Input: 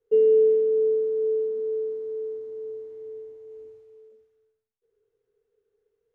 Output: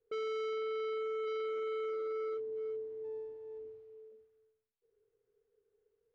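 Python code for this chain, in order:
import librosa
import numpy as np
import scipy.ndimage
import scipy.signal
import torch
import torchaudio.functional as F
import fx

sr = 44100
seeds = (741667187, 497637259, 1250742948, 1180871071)

y = fx.peak_eq(x, sr, hz=340.0, db=14.5, octaves=0.36, at=(1.26, 2.36), fade=0.02)
y = np.clip(10.0 ** (32.5 / 20.0) * y, -1.0, 1.0) / 10.0 ** (32.5 / 20.0)
y = fx.air_absorb(y, sr, metres=180.0)
y = fx.running_max(y, sr, window=5, at=(3.03, 3.58), fade=0.02)
y = y * 10.0 ** (-3.0 / 20.0)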